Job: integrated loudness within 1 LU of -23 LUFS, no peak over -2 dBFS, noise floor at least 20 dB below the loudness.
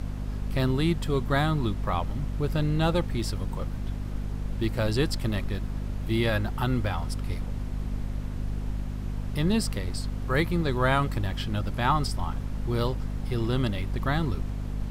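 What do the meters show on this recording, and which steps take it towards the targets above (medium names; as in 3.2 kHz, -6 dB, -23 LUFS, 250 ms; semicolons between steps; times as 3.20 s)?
hum 50 Hz; highest harmonic 250 Hz; hum level -29 dBFS; noise floor -34 dBFS; noise floor target -49 dBFS; loudness -29.0 LUFS; peak level -10.5 dBFS; loudness target -23.0 LUFS
-> de-hum 50 Hz, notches 5; noise print and reduce 15 dB; trim +6 dB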